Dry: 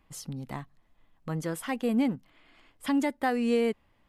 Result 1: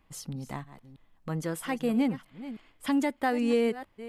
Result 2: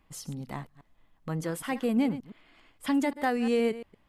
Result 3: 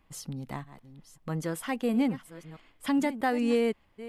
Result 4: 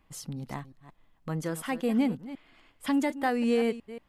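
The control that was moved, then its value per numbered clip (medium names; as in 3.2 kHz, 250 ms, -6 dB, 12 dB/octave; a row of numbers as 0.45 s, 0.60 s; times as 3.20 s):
chunks repeated in reverse, time: 321 ms, 116 ms, 642 ms, 181 ms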